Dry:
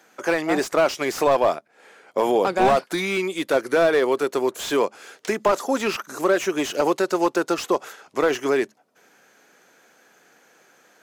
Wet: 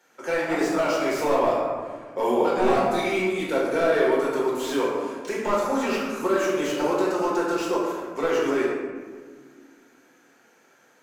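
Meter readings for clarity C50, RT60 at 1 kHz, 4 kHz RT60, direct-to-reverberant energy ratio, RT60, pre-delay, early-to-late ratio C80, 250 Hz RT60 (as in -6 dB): 0.0 dB, 1.5 s, 0.85 s, -6.0 dB, 1.7 s, 4 ms, 2.0 dB, 2.8 s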